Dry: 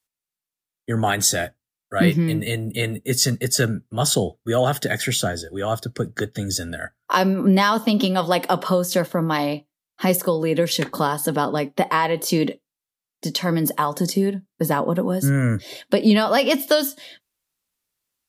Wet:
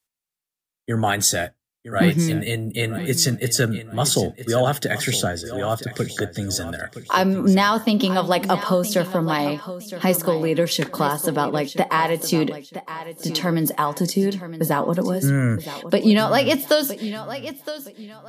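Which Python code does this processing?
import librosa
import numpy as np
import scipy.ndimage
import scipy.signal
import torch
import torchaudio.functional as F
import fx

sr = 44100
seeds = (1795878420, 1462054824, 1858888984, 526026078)

y = fx.echo_feedback(x, sr, ms=965, feedback_pct=28, wet_db=-13)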